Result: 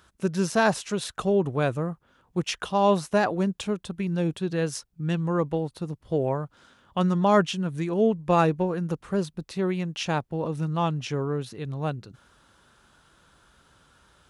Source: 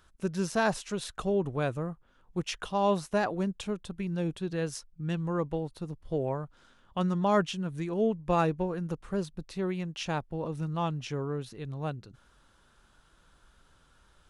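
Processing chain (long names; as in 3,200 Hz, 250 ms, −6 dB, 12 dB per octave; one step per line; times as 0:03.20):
high-pass filter 70 Hz 12 dB per octave
level +5.5 dB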